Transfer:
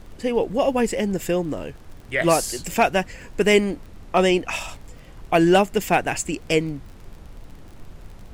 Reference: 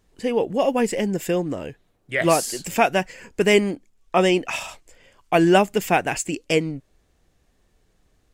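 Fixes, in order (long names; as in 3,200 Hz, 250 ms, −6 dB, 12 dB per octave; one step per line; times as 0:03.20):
clipped peaks rebuilt −7.5 dBFS
click removal
noise reduction from a noise print 22 dB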